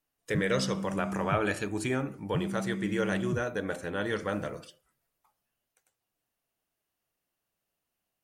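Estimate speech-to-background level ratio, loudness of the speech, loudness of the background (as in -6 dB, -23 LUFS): 4.0 dB, -32.0 LUFS, -36.0 LUFS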